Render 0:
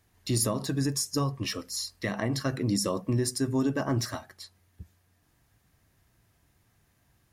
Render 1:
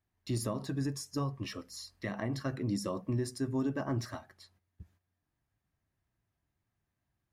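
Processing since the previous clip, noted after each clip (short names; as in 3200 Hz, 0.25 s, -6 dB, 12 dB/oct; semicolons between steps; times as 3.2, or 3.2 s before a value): gate -58 dBFS, range -10 dB; high shelf 3800 Hz -9.5 dB; notch 470 Hz, Q 12; gain -5.5 dB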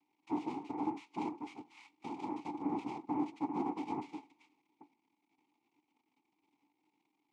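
crackle 330/s -47 dBFS; noise vocoder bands 2; vowel filter u; gain +7 dB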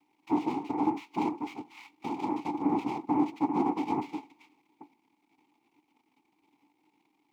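median filter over 5 samples; gain +8.5 dB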